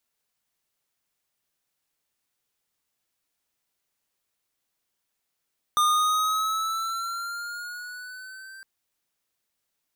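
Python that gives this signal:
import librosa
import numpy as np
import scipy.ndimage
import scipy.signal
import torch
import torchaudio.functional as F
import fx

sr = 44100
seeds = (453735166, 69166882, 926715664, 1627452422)

y = fx.riser_tone(sr, length_s=2.86, level_db=-20, wave='square', hz=1210.0, rise_st=4.5, swell_db=-24.0)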